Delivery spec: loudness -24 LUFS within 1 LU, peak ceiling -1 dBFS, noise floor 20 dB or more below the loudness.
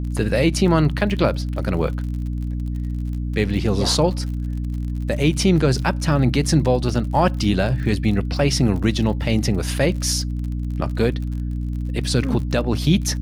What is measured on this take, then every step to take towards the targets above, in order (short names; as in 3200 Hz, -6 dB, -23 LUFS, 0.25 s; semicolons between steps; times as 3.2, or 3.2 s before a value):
ticks 46/s; hum 60 Hz; harmonics up to 300 Hz; hum level -22 dBFS; loudness -21.0 LUFS; peak -5.5 dBFS; loudness target -24.0 LUFS
-> de-click; de-hum 60 Hz, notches 5; gain -3 dB